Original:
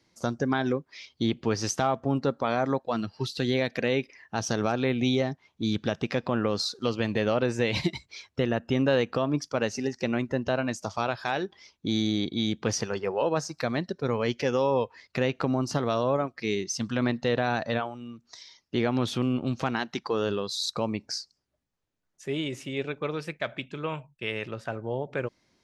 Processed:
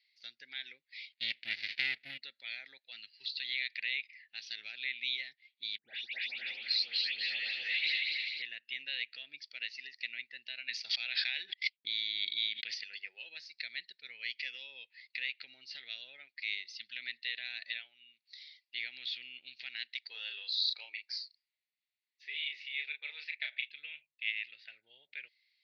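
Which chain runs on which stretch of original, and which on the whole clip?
1.12–2.18 careless resampling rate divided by 4×, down none, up zero stuff + running maximum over 65 samples
5.78–8.42 regenerating reverse delay 0.125 s, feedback 72%, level -1 dB + bell 810 Hz +11 dB 0.26 oct + dispersion highs, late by 0.144 s, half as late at 2500 Hz
10.68–12.74 gate -49 dBFS, range -51 dB + air absorption 58 m + fast leveller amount 100%
20.11–23.69 HPF 340 Hz 24 dB/oct + bell 900 Hz +14 dB 0.85 oct + doubler 34 ms -5 dB
whole clip: elliptic band-pass 2000–4500 Hz, stop band 40 dB; notch 3100 Hz, Q 15

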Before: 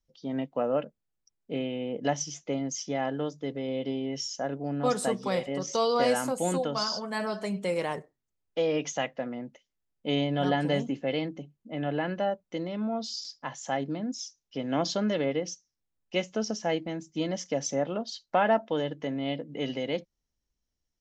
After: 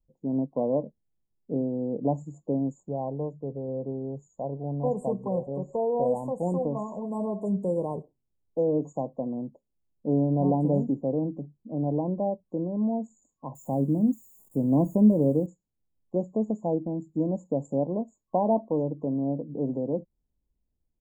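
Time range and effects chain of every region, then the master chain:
2.83–6.61 LPF 2900 Hz 6 dB/oct + bell 280 Hz -8.5 dB 0.69 oct
13.55–15.46 switching spikes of -32.5 dBFS + low shelf 360 Hz +11 dB + resonator 110 Hz, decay 0.21 s, mix 40%
whole clip: FFT band-reject 1100–6700 Hz; tilt shelf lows +9 dB, about 850 Hz; gain -2.5 dB

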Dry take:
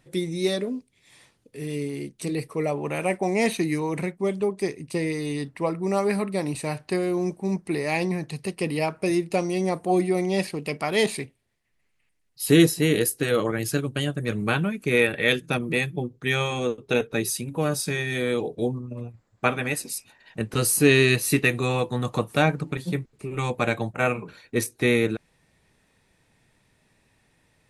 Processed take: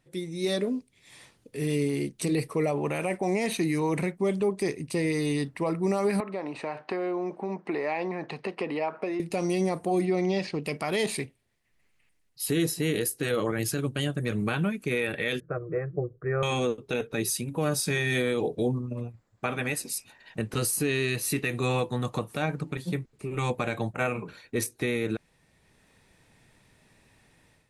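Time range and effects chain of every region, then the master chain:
6.2–9.2 bell 900 Hz +7 dB 1.8 oct + compressor, threshold -28 dBFS + BPF 270–2900 Hz
10.05–10.64 LPF 6100 Hz 24 dB/oct + mismatched tape noise reduction decoder only
15.4–16.43 LPF 1300 Hz 24 dB/oct + fixed phaser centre 880 Hz, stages 6
whole clip: AGC; limiter -9.5 dBFS; gain -8 dB

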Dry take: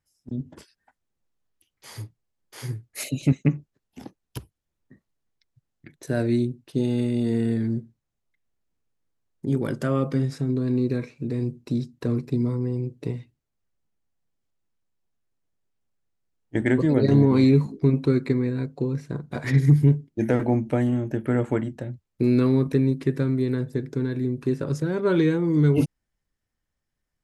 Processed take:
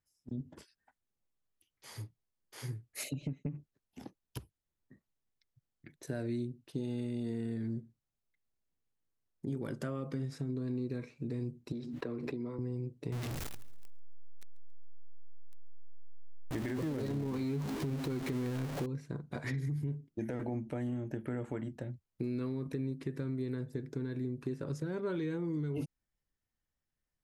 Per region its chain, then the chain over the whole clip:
3.13–3.55 comb 6.8 ms, depth 91% + compressor, threshold -20 dBFS + tape spacing loss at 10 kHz 27 dB
11.72–12.59 three-band isolator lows -14 dB, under 270 Hz, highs -15 dB, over 3700 Hz + backwards sustainer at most 37 dB/s
13.12–18.86 zero-crossing step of -24 dBFS + feedback echo 0.138 s, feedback 52%, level -23 dB
whole clip: limiter -15 dBFS; compressor 3:1, threshold -27 dBFS; gain -7.5 dB

